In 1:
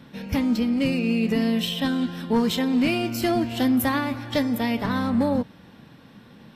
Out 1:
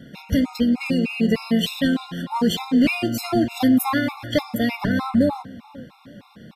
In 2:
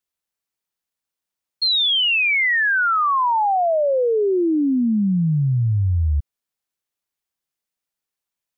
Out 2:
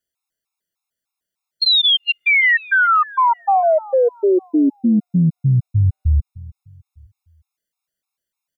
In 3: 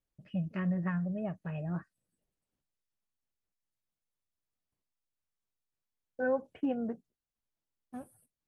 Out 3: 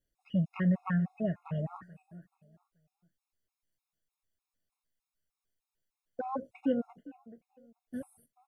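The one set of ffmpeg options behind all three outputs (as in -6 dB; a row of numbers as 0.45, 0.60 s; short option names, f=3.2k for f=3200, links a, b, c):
-filter_complex "[0:a]asplit=2[a][b];[b]adelay=432,lowpass=f=2.4k:p=1,volume=-20dB,asplit=2[c][d];[d]adelay=432,lowpass=f=2.4k:p=1,volume=0.33,asplit=2[e][f];[f]adelay=432,lowpass=f=2.4k:p=1,volume=0.33[g];[a][c][e][g]amix=inputs=4:normalize=0,afftfilt=real='re*gt(sin(2*PI*3.3*pts/sr)*(1-2*mod(floor(b*sr/1024/700),2)),0)':imag='im*gt(sin(2*PI*3.3*pts/sr)*(1-2*mod(floor(b*sr/1024/700),2)),0)':win_size=1024:overlap=0.75,volume=5dB"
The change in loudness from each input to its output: +2.0, +2.5, +1.5 LU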